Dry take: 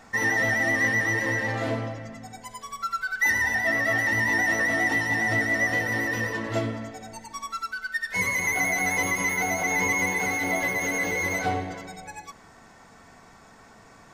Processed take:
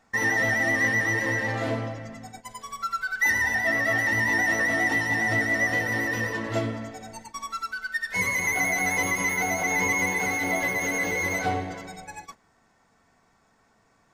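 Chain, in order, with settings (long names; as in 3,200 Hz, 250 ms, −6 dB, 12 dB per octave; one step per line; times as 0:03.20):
noise gate −42 dBFS, range −13 dB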